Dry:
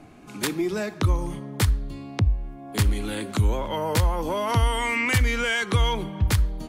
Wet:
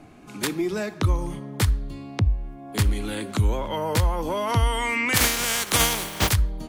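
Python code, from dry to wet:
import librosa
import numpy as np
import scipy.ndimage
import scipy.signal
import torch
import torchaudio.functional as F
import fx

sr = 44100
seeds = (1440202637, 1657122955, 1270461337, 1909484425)

y = fx.spec_flatten(x, sr, power=0.29, at=(5.15, 6.32), fade=0.02)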